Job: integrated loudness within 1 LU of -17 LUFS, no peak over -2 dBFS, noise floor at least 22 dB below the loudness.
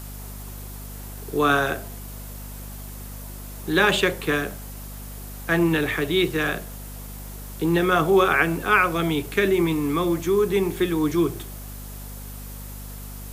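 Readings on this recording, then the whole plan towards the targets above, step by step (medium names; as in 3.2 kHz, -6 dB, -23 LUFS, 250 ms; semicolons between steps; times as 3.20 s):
hum 50 Hz; highest harmonic 250 Hz; hum level -35 dBFS; noise floor -37 dBFS; noise floor target -44 dBFS; loudness -22.0 LUFS; peak level -6.0 dBFS; loudness target -17.0 LUFS
-> de-hum 50 Hz, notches 5; noise print and reduce 7 dB; trim +5 dB; peak limiter -2 dBFS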